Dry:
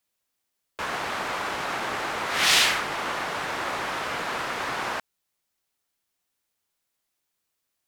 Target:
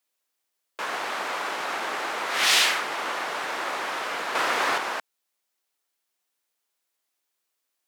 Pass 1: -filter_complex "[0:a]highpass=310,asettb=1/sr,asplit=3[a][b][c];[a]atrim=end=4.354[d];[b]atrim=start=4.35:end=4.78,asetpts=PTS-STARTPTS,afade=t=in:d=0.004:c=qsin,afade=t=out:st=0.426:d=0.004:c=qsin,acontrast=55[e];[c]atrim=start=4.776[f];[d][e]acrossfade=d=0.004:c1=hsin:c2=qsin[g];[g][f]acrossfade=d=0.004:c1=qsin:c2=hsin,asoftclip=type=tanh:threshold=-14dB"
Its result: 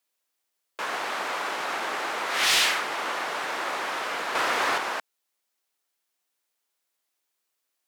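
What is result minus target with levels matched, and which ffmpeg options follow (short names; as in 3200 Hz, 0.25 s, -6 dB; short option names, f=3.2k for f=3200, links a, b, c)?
soft clip: distortion +13 dB
-filter_complex "[0:a]highpass=310,asettb=1/sr,asplit=3[a][b][c];[a]atrim=end=4.354[d];[b]atrim=start=4.35:end=4.78,asetpts=PTS-STARTPTS,afade=t=in:d=0.004:c=qsin,afade=t=out:st=0.426:d=0.004:c=qsin,acontrast=55[e];[c]atrim=start=4.776[f];[d][e]acrossfade=d=0.004:c1=hsin:c2=qsin[g];[g][f]acrossfade=d=0.004:c1=qsin:c2=hsin,asoftclip=type=tanh:threshold=-5.5dB"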